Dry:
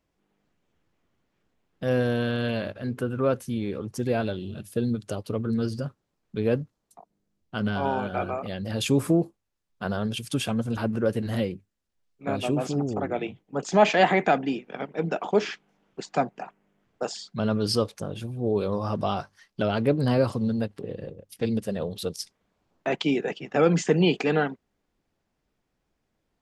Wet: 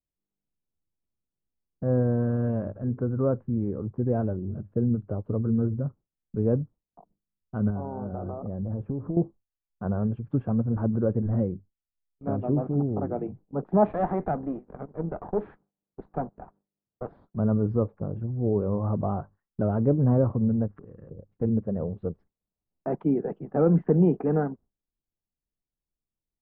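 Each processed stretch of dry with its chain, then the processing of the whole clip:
0:07.70–0:09.17: low-pass filter 1,100 Hz + downward compressor, threshold −28 dBFS
0:13.85–0:17.37: gain on one half-wave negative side −12 dB + high-pass filter 100 Hz 6 dB per octave + parametric band 3,900 Hz +13.5 dB 0.49 octaves
0:20.68–0:21.11: downward compressor 5 to 1, threshold −44 dBFS + flat-topped bell 2,300 Hz +13.5 dB 2.3 octaves
whole clip: low-pass filter 1,300 Hz 24 dB per octave; noise gate with hold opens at −47 dBFS; spectral tilt −3 dB per octave; level −5 dB

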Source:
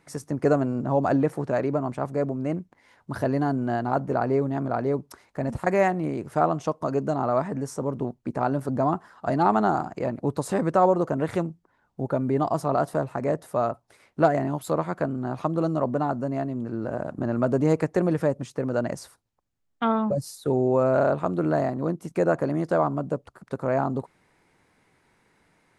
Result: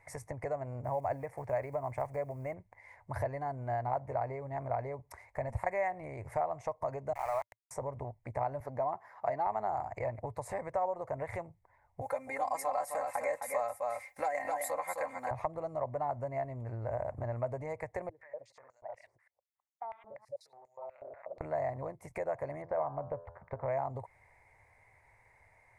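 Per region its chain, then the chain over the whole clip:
0:00.84–0:02.55: one scale factor per block 7 bits + notch filter 3,900 Hz, Q 15
0:07.13–0:07.71: downward expander −25 dBFS + high-pass filter 800 Hz + centre clipping without the shift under −33.5 dBFS
0:08.60–0:09.47: high-pass filter 170 Hz + parametric band 8,500 Hz −14 dB 0.3 octaves
0:12.01–0:15.31: spectral tilt +4 dB per octave + comb filter 3.8 ms, depth 85% + single-tap delay 260 ms −7.5 dB
0:18.09–0:21.41: delay that plays each chunk backwards 108 ms, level −3.5 dB + downward compressor 5 to 1, threshold −32 dBFS + band-pass on a step sequencer 8.2 Hz 350–6,500 Hz
0:22.62–0:23.68: low-pass filter 1,800 Hz + hum removal 84.36 Hz, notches 21
whole clip: downward compressor 6 to 1, threshold −30 dBFS; drawn EQ curve 110 Hz 0 dB, 170 Hz −21 dB, 320 Hz −22 dB, 600 Hz −3 dB, 960 Hz −3 dB, 1,400 Hz −16 dB, 2,100 Hz +2 dB, 3,000 Hz −22 dB, 8,000 Hz −11 dB; level +5 dB

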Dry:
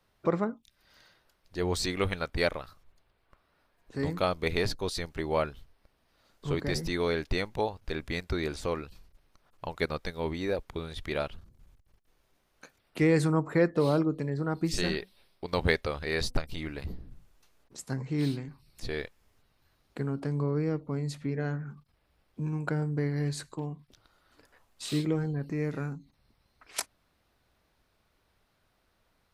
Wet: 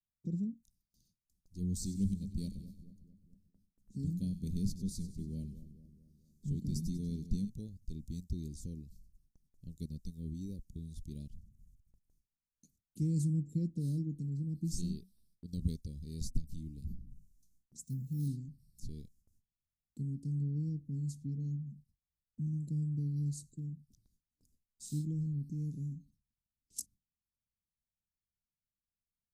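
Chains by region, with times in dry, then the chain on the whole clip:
0:01.60–0:07.50: parametric band 200 Hz +10.5 dB 0.25 octaves + echo with a time of its own for lows and highs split 1,100 Hz, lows 221 ms, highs 96 ms, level −13 dB
0:17.83–0:18.28: notch comb filter 330 Hz + bad sample-rate conversion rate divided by 3×, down none, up hold
whole clip: Chebyshev band-stop filter 210–6,500 Hz, order 3; noise gate with hold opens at −58 dBFS; bass and treble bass −3 dB, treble −5 dB

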